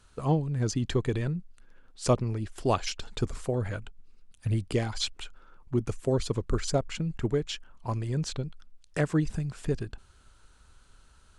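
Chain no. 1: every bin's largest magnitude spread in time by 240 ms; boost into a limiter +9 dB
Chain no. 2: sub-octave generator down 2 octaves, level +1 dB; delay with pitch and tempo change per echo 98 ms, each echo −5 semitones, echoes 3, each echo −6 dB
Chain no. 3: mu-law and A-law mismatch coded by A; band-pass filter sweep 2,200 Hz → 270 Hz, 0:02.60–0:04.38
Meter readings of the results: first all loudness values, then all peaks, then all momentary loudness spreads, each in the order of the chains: −15.0, −29.5, −40.0 LKFS; −1.0, −10.5, −20.0 dBFS; 10, 10, 15 LU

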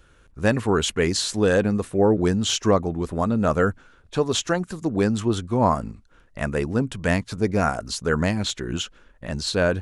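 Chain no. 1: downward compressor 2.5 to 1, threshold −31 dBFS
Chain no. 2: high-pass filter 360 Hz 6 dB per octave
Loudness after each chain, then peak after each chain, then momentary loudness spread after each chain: −32.0, −25.5 LKFS; −17.0, −6.5 dBFS; 7, 9 LU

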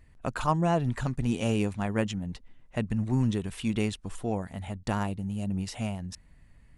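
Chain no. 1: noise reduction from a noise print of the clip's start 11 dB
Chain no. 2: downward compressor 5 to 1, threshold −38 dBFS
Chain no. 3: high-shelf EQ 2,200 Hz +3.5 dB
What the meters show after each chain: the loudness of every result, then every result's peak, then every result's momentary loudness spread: −31.0, −42.0, −30.5 LKFS; −12.5, −24.0, −12.0 dBFS; 11, 6, 10 LU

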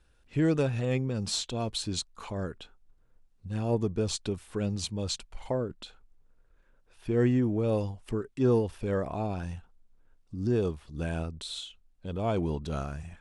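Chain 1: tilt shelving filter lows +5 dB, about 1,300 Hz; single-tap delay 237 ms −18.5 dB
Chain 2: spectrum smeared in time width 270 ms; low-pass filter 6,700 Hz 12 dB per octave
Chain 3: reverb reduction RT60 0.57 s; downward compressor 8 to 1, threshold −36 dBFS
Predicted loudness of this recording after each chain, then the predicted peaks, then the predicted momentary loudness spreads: −27.0, −34.0, −41.5 LKFS; −9.5, −17.5, −26.0 dBFS; 14, 14, 7 LU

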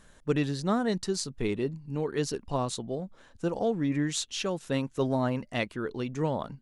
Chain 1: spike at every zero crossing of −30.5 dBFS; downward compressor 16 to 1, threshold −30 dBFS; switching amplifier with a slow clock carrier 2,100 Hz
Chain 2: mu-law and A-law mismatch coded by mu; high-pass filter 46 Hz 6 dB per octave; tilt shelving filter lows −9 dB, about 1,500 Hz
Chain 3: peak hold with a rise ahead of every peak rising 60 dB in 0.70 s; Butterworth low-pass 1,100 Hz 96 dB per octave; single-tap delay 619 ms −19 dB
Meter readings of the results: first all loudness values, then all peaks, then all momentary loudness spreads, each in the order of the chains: −35.5, −30.5, −30.0 LKFS; −21.0, −6.0, −14.5 dBFS; 2, 13, 6 LU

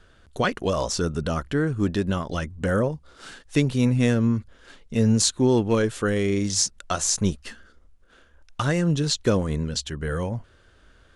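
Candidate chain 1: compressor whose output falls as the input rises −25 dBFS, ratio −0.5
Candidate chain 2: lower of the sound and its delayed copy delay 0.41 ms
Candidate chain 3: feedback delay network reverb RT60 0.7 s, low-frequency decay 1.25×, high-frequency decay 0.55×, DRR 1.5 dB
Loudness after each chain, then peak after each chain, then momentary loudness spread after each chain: −27.5, −24.5, −20.5 LKFS; −7.5, −4.0, −3.5 dBFS; 11, 10, 11 LU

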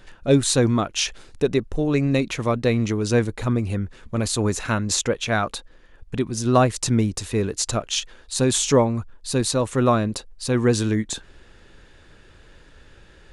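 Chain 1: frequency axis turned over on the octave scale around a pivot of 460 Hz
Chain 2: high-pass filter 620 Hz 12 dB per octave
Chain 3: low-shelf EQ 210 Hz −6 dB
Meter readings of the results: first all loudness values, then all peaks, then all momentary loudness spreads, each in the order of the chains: −24.5, −26.5, −24.0 LKFS; −5.5, −6.0, −4.0 dBFS; 10, 11, 10 LU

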